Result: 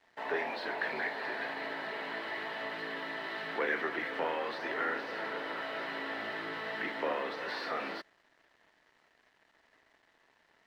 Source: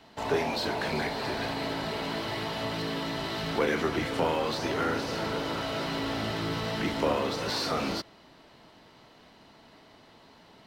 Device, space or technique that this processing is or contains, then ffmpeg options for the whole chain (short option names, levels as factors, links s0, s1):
pocket radio on a weak battery: -af "highpass=370,lowpass=3200,equalizer=f=7100:t=o:w=0.53:g=-6,aeval=exprs='sgn(val(0))*max(abs(val(0))-0.00126,0)':c=same,equalizer=f=1800:t=o:w=0.38:g=11,volume=0.531"